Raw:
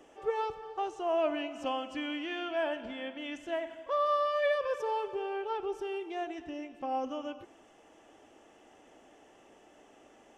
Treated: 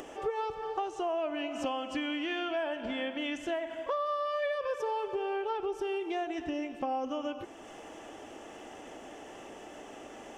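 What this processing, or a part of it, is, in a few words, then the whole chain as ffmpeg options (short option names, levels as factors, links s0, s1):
upward and downward compression: -af "acompressor=mode=upward:threshold=0.00355:ratio=2.5,acompressor=threshold=0.0112:ratio=6,volume=2.66"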